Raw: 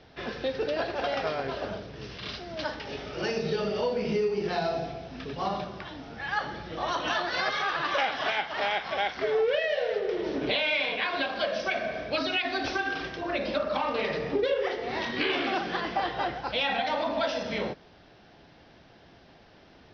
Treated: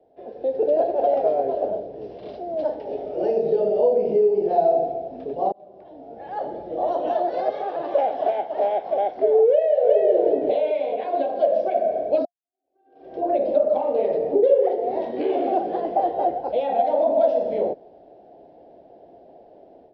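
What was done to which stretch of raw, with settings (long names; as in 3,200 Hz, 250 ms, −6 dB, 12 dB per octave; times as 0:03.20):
0:05.52–0:06.45: fade in
0:09.46–0:09.97: delay throw 370 ms, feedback 35%, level −0.5 dB
0:12.25–0:13.17: fade in exponential
whole clip: drawn EQ curve 200 Hz 0 dB, 700 Hz +4 dB, 1,200 Hz −25 dB; automatic gain control gain up to 11.5 dB; three-way crossover with the lows and the highs turned down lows −18 dB, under 300 Hz, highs −21 dB, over 5,500 Hz; level −2.5 dB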